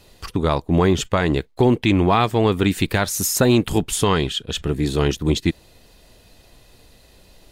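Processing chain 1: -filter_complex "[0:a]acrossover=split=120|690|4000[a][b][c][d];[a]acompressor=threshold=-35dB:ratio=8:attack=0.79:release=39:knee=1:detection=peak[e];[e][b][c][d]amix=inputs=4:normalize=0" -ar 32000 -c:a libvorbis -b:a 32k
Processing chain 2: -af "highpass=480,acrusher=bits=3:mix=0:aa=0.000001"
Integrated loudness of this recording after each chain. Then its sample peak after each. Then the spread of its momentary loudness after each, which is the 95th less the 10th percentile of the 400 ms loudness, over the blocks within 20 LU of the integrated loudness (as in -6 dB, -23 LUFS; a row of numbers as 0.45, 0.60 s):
-20.0, -23.0 LUFS; -3.0, -5.0 dBFS; 7, 8 LU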